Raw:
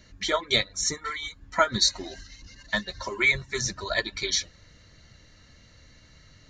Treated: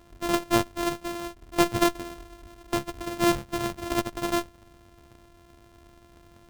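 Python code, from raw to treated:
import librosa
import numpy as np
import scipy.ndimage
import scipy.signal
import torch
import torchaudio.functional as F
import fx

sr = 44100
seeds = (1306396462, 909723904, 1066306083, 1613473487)

y = np.r_[np.sort(x[:len(x) // 128 * 128].reshape(-1, 128), axis=1).ravel(), x[len(x) // 128 * 128:]]
y = fx.running_max(y, sr, window=17)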